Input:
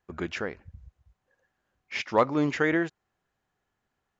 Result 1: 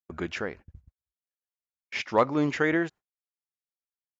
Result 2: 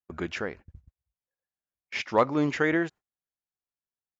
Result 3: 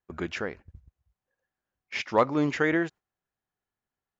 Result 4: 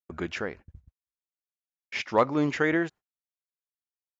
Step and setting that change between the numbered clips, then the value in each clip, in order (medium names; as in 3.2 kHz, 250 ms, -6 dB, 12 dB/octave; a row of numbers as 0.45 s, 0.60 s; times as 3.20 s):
gate, range: -38 dB, -25 dB, -11 dB, -50 dB